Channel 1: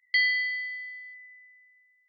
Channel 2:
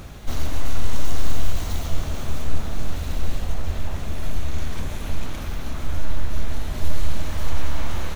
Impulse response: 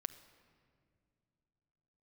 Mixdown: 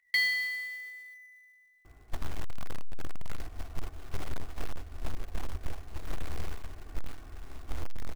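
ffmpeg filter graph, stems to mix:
-filter_complex "[0:a]highshelf=f=3500:g=-7.5,volume=1.26[s0];[1:a]lowpass=f=2000:w=0.5412,lowpass=f=2000:w=1.3066,agate=range=0.316:threshold=0.126:ratio=16:detection=peak,acompressor=threshold=0.112:ratio=16,adelay=1850,volume=0.355[s1];[s0][s1]amix=inputs=2:normalize=0,aecho=1:1:2.7:0.64,acrusher=bits=4:mode=log:mix=0:aa=0.000001"

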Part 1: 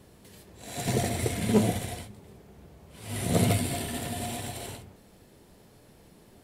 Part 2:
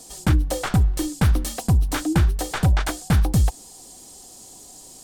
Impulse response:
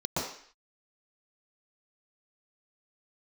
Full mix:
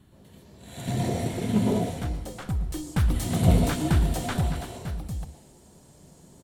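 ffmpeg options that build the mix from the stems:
-filter_complex "[0:a]volume=0.531,asplit=3[s0][s1][s2];[s1]volume=0.447[s3];[s2]volume=0.133[s4];[1:a]adelay=1750,volume=0.531,afade=t=in:st=2.41:d=0.72:silence=0.375837,afade=t=out:st=4.31:d=0.25:silence=0.281838,asplit=2[s5][s6];[s6]volume=0.0841[s7];[2:a]atrim=start_sample=2205[s8];[s3][s7]amix=inputs=2:normalize=0[s9];[s9][s8]afir=irnorm=-1:irlink=0[s10];[s4]aecho=0:1:724:1[s11];[s0][s5][s10][s11]amix=inputs=4:normalize=0"

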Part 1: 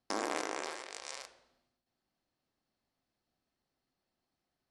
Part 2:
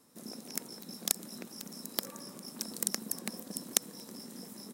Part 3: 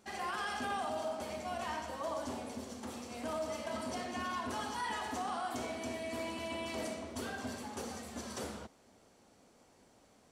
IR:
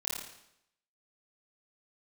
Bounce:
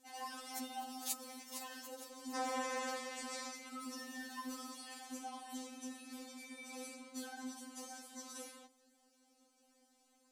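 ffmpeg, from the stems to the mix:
-filter_complex "[0:a]alimiter=limit=0.075:level=0:latency=1,adelay=2250,volume=1.19[s0];[1:a]highpass=f=450:p=1,volume=0.473,asplit=3[s1][s2][s3];[s1]atrim=end=1.95,asetpts=PTS-STARTPTS,afade=t=out:st=1.946:d=0.004:c=hsin[s4];[s2]atrim=start=1.95:end=3.82,asetpts=PTS-STARTPTS,volume=0[s5];[s3]atrim=start=3.82,asetpts=PTS-STARTPTS,afade=t=in:d=0.004:c=hsin[s6];[s4][s5][s6]concat=n=3:v=0:a=1,asplit=2[s7][s8];[s8]volume=0.376[s9];[2:a]highshelf=f=4500:g=10.5,volume=0.398[s10];[s9]aecho=0:1:459|918|1377|1836|2295|2754:1|0.43|0.185|0.0795|0.0342|0.0147[s11];[s0][s7][s10][s11]amix=inputs=4:normalize=0,afftfilt=real='re*3.46*eq(mod(b,12),0)':imag='im*3.46*eq(mod(b,12),0)':win_size=2048:overlap=0.75"

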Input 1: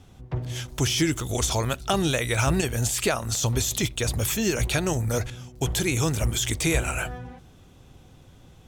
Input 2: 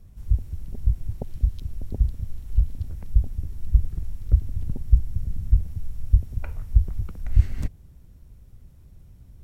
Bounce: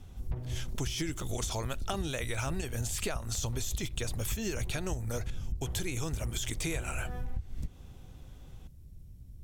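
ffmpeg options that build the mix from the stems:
-filter_complex "[0:a]volume=0.596[s0];[1:a]equalizer=f=1200:w=0.57:g=-11.5,acompressor=threshold=0.0501:ratio=3,volume=0.841[s1];[s0][s1]amix=inputs=2:normalize=0,acompressor=threshold=0.0316:ratio=6"

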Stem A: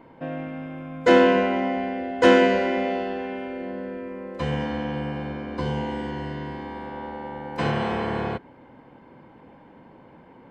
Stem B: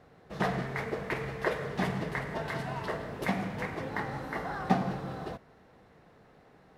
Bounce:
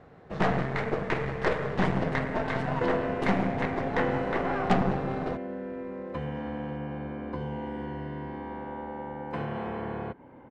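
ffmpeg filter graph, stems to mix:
-filter_complex "[0:a]highshelf=f=5300:g=-11,acompressor=threshold=0.0224:ratio=2.5,adelay=1750,volume=0.944[s0];[1:a]aeval=exprs='0.224*(cos(1*acos(clip(val(0)/0.224,-1,1)))-cos(1*PI/2))+0.0447*(cos(5*acos(clip(val(0)/0.224,-1,1)))-cos(5*PI/2))+0.0447*(cos(6*acos(clip(val(0)/0.224,-1,1)))-cos(6*PI/2))+0.0794*(cos(8*acos(clip(val(0)/0.224,-1,1)))-cos(8*PI/2))':c=same,lowpass=f=7500:w=0.5412,lowpass=f=7500:w=1.3066,volume=0.944[s1];[s0][s1]amix=inputs=2:normalize=0,equalizer=f=5500:w=0.67:g=-9.5"

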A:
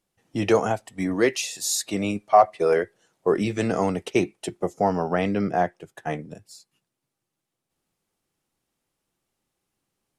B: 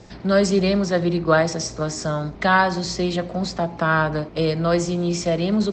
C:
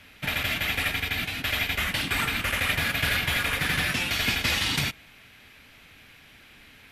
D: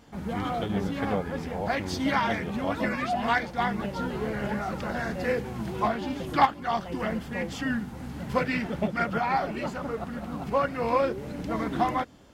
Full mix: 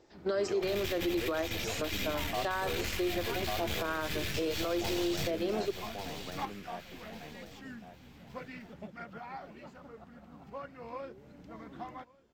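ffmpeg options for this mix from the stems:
-filter_complex "[0:a]volume=0.126,asplit=2[s0][s1];[s1]volume=0.631[s2];[1:a]acompressor=threshold=0.0794:ratio=3,agate=range=0.178:threshold=0.0631:ratio=16:detection=peak,lowshelf=f=250:t=q:w=3:g=-9.5,volume=0.75[s3];[2:a]acrossover=split=200|3000[s4][s5][s6];[s5]acompressor=threshold=0.01:ratio=6[s7];[s4][s7][s6]amix=inputs=3:normalize=0,aeval=exprs='(tanh(50.1*val(0)+0.8)-tanh(0.8))/50.1':c=same,adelay=400,volume=1.19,asplit=2[s8][s9];[s9]volume=0.282[s10];[3:a]volume=0.126,asplit=2[s11][s12];[s12]volume=0.0708[s13];[s2][s10][s13]amix=inputs=3:normalize=0,aecho=0:1:1143|2286|3429|4572:1|0.31|0.0961|0.0298[s14];[s0][s3][s8][s11][s14]amix=inputs=5:normalize=0,equalizer=f=10000:w=3.6:g=-14,alimiter=limit=0.0668:level=0:latency=1:release=63"

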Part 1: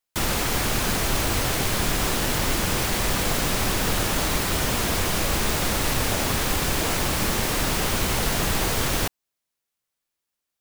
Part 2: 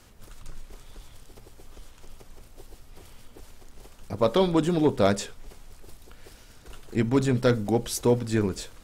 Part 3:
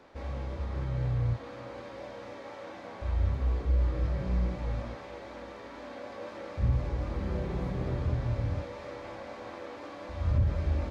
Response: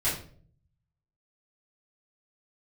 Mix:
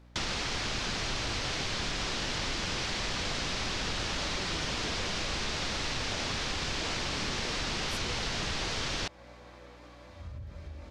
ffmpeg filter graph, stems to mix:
-filter_complex "[0:a]lowpass=f=5500:w=0.5412,lowpass=f=5500:w=1.3066,aeval=exprs='val(0)+0.00355*(sin(2*PI*60*n/s)+sin(2*PI*2*60*n/s)/2+sin(2*PI*3*60*n/s)/3+sin(2*PI*4*60*n/s)/4+sin(2*PI*5*60*n/s)/5)':c=same,volume=0.562[s0];[1:a]afwtdn=0.0158,volume=0.119[s1];[2:a]acompressor=threshold=0.0398:ratio=6,volume=0.266[s2];[s0][s1][s2]amix=inputs=3:normalize=0,highshelf=f=2200:g=10,acompressor=threshold=0.0224:ratio=2.5"

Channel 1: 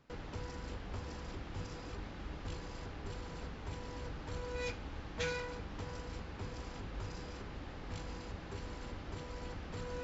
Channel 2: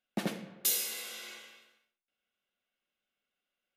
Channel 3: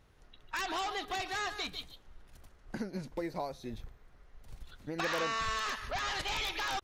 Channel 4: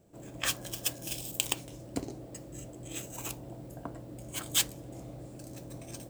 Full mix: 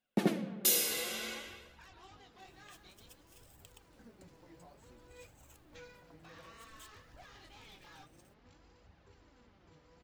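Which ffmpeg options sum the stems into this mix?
-filter_complex "[0:a]highpass=53,adelay=550,volume=0.211[s0];[1:a]equalizer=f=200:w=0.33:g=9.5,dynaudnorm=f=190:g=7:m=2,volume=1.19[s1];[2:a]flanger=delay=18.5:depth=5.4:speed=2.2,adelay=1250,volume=0.168[s2];[3:a]acompressor=threshold=0.0112:ratio=2.5,acrusher=bits=8:mix=0:aa=0.000001,adelay=2250,volume=0.15[s3];[s0][s1][s2][s3]amix=inputs=4:normalize=0,flanger=delay=1:depth=5.8:regen=43:speed=0.56:shape=triangular"

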